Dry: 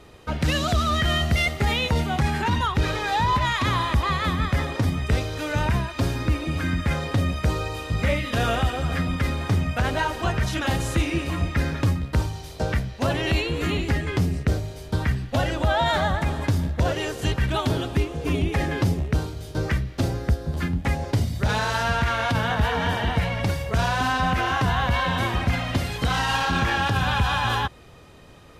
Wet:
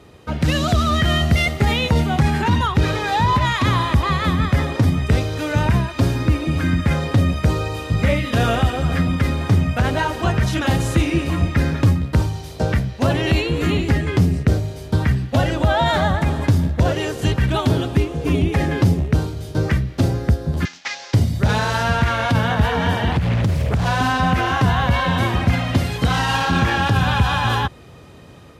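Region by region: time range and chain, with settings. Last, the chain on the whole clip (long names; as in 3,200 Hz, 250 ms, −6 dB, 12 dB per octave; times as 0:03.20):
0:20.65–0:21.14: variable-slope delta modulation 32 kbit/s + high-pass filter 1,300 Hz + high-shelf EQ 3,200 Hz +11.5 dB
0:23.12–0:23.86: bass and treble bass +8 dB, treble +3 dB + downward compressor 12 to 1, threshold −20 dBFS + highs frequency-modulated by the lows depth 0.6 ms
whole clip: high-pass filter 78 Hz; low-shelf EQ 370 Hz +6 dB; automatic gain control gain up to 3 dB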